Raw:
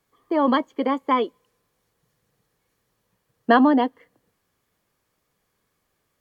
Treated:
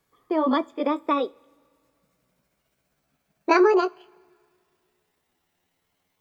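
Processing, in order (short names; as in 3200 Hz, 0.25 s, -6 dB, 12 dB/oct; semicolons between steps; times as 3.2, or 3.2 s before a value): gliding pitch shift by +10.5 st starting unshifted; dynamic EQ 1900 Hz, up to -5 dB, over -33 dBFS, Q 0.89; two-slope reverb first 0.28 s, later 2.3 s, from -22 dB, DRR 17 dB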